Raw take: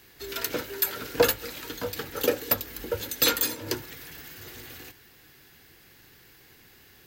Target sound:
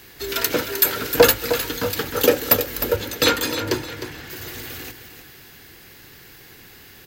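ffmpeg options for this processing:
-filter_complex "[0:a]asettb=1/sr,asplit=3[a][b][c];[a]atrim=end=2.964[d];[b]atrim=start=2.96:end=4.3,asetpts=PTS-STARTPTS,afade=t=in:d=0.004:c=qsin,afade=t=out:st=1.336:d=0.004:c=qsin,aemphasis=mode=reproduction:type=50kf[e];[c]atrim=start=4.296[f];[d][e]acrossfade=d=0.004:c1=hsin:c2=qsin[g];[g][f]acrossfade=d=0.004:c1=qsin:c2=hsin,aecho=1:1:308|616|924:0.299|0.0955|0.0306,acontrast=83,volume=2dB"

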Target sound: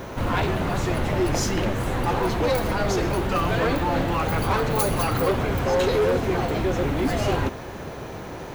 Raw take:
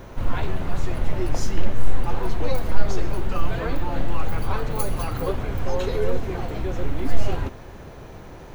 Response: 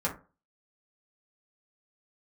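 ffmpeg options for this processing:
-af "highpass=f=130:p=1,asoftclip=type=hard:threshold=-25dB,volume=8dB"

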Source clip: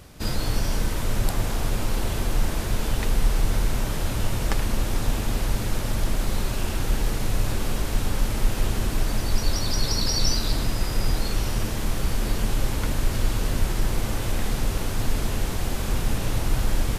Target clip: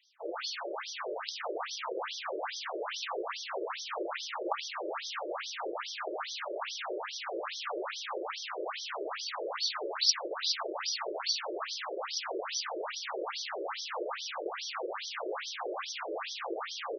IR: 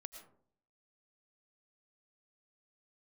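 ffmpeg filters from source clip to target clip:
-af "afftdn=nr=13:nf=-43,adynamicequalizer=threshold=0.00126:dfrequency=1200:dqfactor=5.7:tfrequency=1200:tqfactor=5.7:attack=5:release=100:ratio=0.375:range=3:mode=boostabove:tftype=bell,aecho=1:1:1128|2256|3384|4512|5640|6768|7896:0.447|0.259|0.15|0.0872|0.0505|0.0293|0.017,aexciter=amount=1:drive=8.8:freq=5.7k,afftfilt=real='re*between(b*sr/1024,430*pow(4500/430,0.5+0.5*sin(2*PI*2.4*pts/sr))/1.41,430*pow(4500/430,0.5+0.5*sin(2*PI*2.4*pts/sr))*1.41)':imag='im*between(b*sr/1024,430*pow(4500/430,0.5+0.5*sin(2*PI*2.4*pts/sr))/1.41,430*pow(4500/430,0.5+0.5*sin(2*PI*2.4*pts/sr))*1.41)':win_size=1024:overlap=0.75,volume=2.5dB"

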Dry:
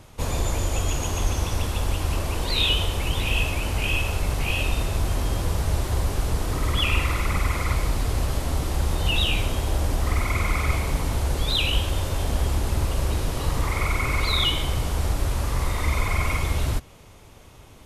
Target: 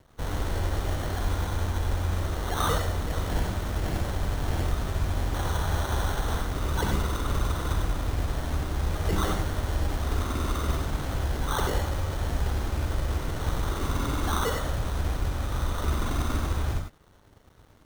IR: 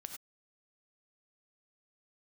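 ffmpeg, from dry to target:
-filter_complex "[0:a]acrossover=split=440|3800[a][b][c];[c]acrusher=bits=6:mix=0:aa=0.000001[d];[a][b][d]amix=inputs=3:normalize=0,asettb=1/sr,asplit=3[e][f][g];[e]atrim=end=5.334[h];[f]atrim=start=5.33:end=6.41,asetpts=PTS-STARTPTS,afade=t=in:d=0.004:c=qsin,afade=t=out:st=1.076:d=0.004:c=qsin,equalizer=f=980:w=0.93:g=8.5[i];[g]atrim=start=6.406[j];[h][i]acrossfade=d=0.004:c1=hsin:c2=qsin[k];[k][j]acrossfade=d=0.004:c1=qsin:c2=hsin,acrusher=samples=18:mix=1:aa=0.000001[l];[1:a]atrim=start_sample=2205[m];[l][m]afir=irnorm=-1:irlink=0,aeval=exprs='sgn(val(0))*max(abs(val(0))-0.00141,0)':c=same"

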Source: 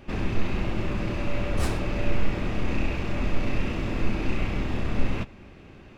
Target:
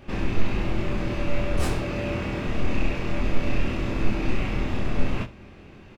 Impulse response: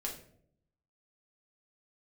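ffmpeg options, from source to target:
-filter_complex "[0:a]asettb=1/sr,asplit=3[a][b][c];[a]atrim=end=1.814[d];[b]atrim=start=1.81:end=2.47,asetpts=PTS-STARTPTS,afade=t=in:d=0.004:c=qsin,afade=t=out:st=0.656:d=0.004:c=qsin,highpass=59[e];[c]atrim=start=2.466[f];[d][e]acrossfade=d=0.004:c1=hsin:c2=qsin[g];[g][f]acrossfade=d=0.004:c1=qsin:c2=hsin,asplit=2[h][i];[i]aecho=0:1:24|66:0.596|0.15[j];[h][j]amix=inputs=2:normalize=0"

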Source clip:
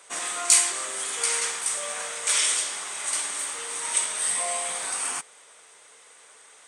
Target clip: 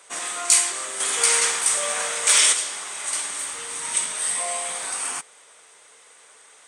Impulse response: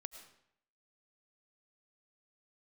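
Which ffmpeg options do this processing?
-filter_complex "[0:a]asettb=1/sr,asplit=3[a][b][c];[a]atrim=end=1.004[d];[b]atrim=start=1:end=2.53,asetpts=PTS-STARTPTS,afade=t=in:d=0.004:c=qsin,afade=t=out:st=1.526:d=0.004:c=qsin,acontrast=44[e];[c]atrim=start=2.526[f];[d][e]acrossfade=d=0.004:c1=hsin:c2=qsin[g];[g][f]acrossfade=d=0.004:c1=qsin:c2=hsin,asettb=1/sr,asplit=3[h][i][j];[h]atrim=end=3.124[k];[i]atrim=start=3.12:end=4.12,asetpts=PTS-STARTPTS,afade=t=in:d=0.004:c=qsin,afade=t=out:st=0.996:d=0.004:c=qsin,asubboost=boost=9.5:cutoff=250[l];[j]atrim=start=4.116[m];[k][l]acrossfade=d=0.004:c1=hsin:c2=qsin[n];[n][m]acrossfade=d=0.004:c1=qsin:c2=hsin,volume=1dB"

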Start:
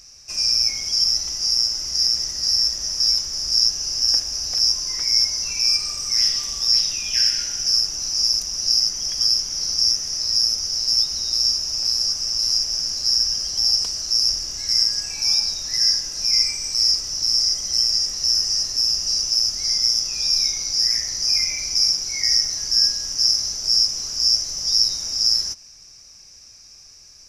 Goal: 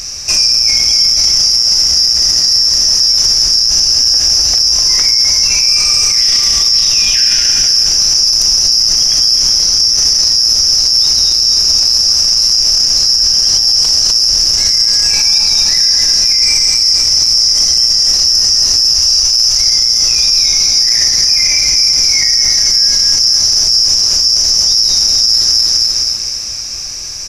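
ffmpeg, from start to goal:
-filter_complex "[0:a]bandreject=f=52.77:t=h:w=4,bandreject=f=105.54:t=h:w=4,bandreject=f=158.31:t=h:w=4,bandreject=f=211.08:t=h:w=4,bandreject=f=263.85:t=h:w=4,bandreject=f=316.62:t=h:w=4,bandreject=f=369.39:t=h:w=4,bandreject=f=422.16:t=h:w=4,bandreject=f=474.93:t=h:w=4,bandreject=f=527.7:t=h:w=4,bandreject=f=580.47:t=h:w=4,bandreject=f=633.24:t=h:w=4,bandreject=f=686.01:t=h:w=4,bandreject=f=738.78:t=h:w=4,bandreject=f=791.55:t=h:w=4,bandreject=f=844.32:t=h:w=4,bandreject=f=897.09:t=h:w=4,bandreject=f=949.86:t=h:w=4,bandreject=f=1.00263k:t=h:w=4,bandreject=f=1.0554k:t=h:w=4,bandreject=f=1.10817k:t=h:w=4,bandreject=f=1.16094k:t=h:w=4,bandreject=f=1.21371k:t=h:w=4,bandreject=f=1.26648k:t=h:w=4,bandreject=f=1.31925k:t=h:w=4,bandreject=f=1.37202k:t=h:w=4,bandreject=f=1.42479k:t=h:w=4,bandreject=f=1.47756k:t=h:w=4,bandreject=f=1.53033k:t=h:w=4,bandreject=f=1.5831k:t=h:w=4,bandreject=f=1.63587k:t=h:w=4,asettb=1/sr,asplit=3[a][b][c];[a]atrim=end=18.944[d];[b]atrim=start=18.94:end=19.61,asetpts=PTS-STARTPTS,afade=t=in:d=0.004:c=qsin,afade=t=out:st=0.666:d=0.004:c=qsin,equalizer=f=280:w=1.3:g=-14.5[e];[c]atrim=start=19.606[f];[d][e]acrossfade=d=0.004:c1=hsin:c2=qsin[g];[g][f]acrossfade=d=0.004:c1=qsin:c2=hsin,aecho=1:1:252|504|756|1008|1260|1512:0.447|0.219|0.107|0.0526|0.0258|0.0126,alimiter=level_in=23.5dB:limit=-1dB:release=50:level=0:latency=1,volume=-1dB"

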